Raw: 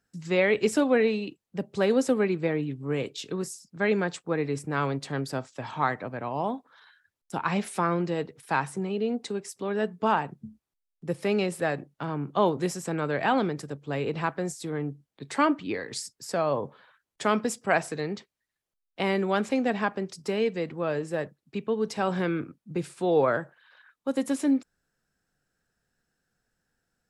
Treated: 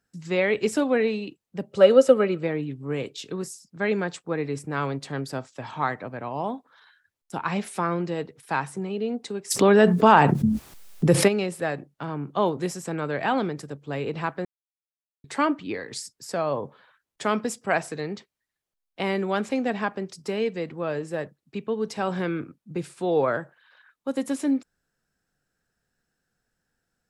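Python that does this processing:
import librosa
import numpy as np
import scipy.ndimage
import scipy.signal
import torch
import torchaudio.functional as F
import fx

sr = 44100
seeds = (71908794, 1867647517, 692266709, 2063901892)

y = fx.small_body(x, sr, hz=(550.0, 1300.0, 2900.0), ring_ms=45, db=15, at=(1.71, 2.43))
y = fx.env_flatten(y, sr, amount_pct=70, at=(9.5, 11.27), fade=0.02)
y = fx.edit(y, sr, fx.silence(start_s=14.45, length_s=0.79), tone=tone)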